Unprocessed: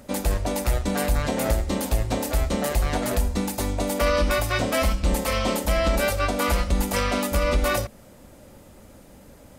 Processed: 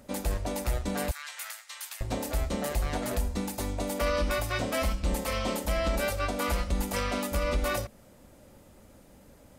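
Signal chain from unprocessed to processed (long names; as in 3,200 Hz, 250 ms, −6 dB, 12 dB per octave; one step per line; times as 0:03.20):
0:01.11–0:02.01: high-pass filter 1,300 Hz 24 dB per octave
level −6.5 dB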